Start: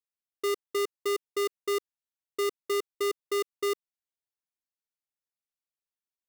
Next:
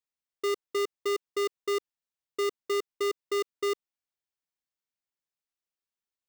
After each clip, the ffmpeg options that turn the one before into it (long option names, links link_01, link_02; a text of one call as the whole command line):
ffmpeg -i in.wav -af "equalizer=frequency=12000:width=1.7:gain=-11.5" out.wav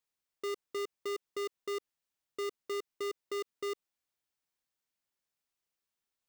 ffmpeg -i in.wav -af "alimiter=level_in=12dB:limit=-24dB:level=0:latency=1,volume=-12dB,volume=3.5dB" out.wav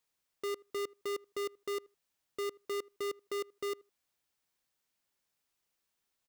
ffmpeg -i in.wav -filter_complex "[0:a]asoftclip=type=tanh:threshold=-39.5dB,asplit=2[link_01][link_02];[link_02]adelay=79,lowpass=frequency=1200:poles=1,volume=-22.5dB,asplit=2[link_03][link_04];[link_04]adelay=79,lowpass=frequency=1200:poles=1,volume=0.15[link_05];[link_01][link_03][link_05]amix=inputs=3:normalize=0,volume=5.5dB" out.wav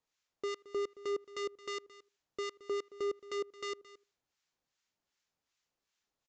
ffmpeg -i in.wav -filter_complex "[0:a]acrossover=split=1100[link_01][link_02];[link_01]aeval=exprs='val(0)*(1-0.7/2+0.7/2*cos(2*PI*2.6*n/s))':channel_layout=same[link_03];[link_02]aeval=exprs='val(0)*(1-0.7/2-0.7/2*cos(2*PI*2.6*n/s))':channel_layout=same[link_04];[link_03][link_04]amix=inputs=2:normalize=0,aresample=16000,aresample=44100,aecho=1:1:221:0.133,volume=3dB" out.wav